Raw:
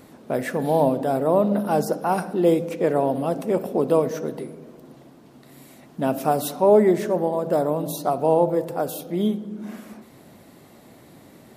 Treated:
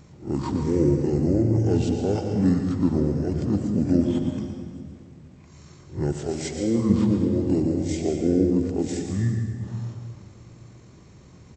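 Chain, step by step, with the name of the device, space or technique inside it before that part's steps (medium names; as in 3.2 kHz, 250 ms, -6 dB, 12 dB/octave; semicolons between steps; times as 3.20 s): reverse spectral sustain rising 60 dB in 0.30 s; monster voice (pitch shift -10.5 st; bass shelf 200 Hz +4 dB; delay 118 ms -11.5 dB; reverberation RT60 1.8 s, pre-delay 109 ms, DRR 4.5 dB); 6.12–6.90 s: bass shelf 460 Hz -7.5 dB; trim -4.5 dB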